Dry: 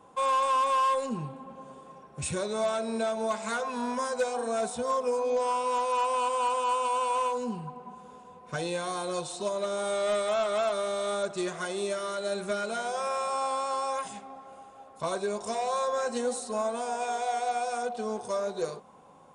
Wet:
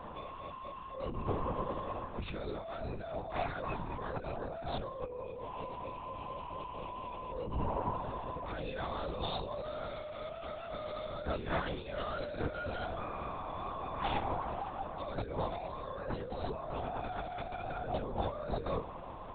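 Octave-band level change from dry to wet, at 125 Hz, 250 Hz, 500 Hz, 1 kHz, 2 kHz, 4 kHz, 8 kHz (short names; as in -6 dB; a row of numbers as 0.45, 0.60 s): +3.5 dB, -6.0 dB, -10.0 dB, -10.0 dB, -8.0 dB, -9.0 dB, under -40 dB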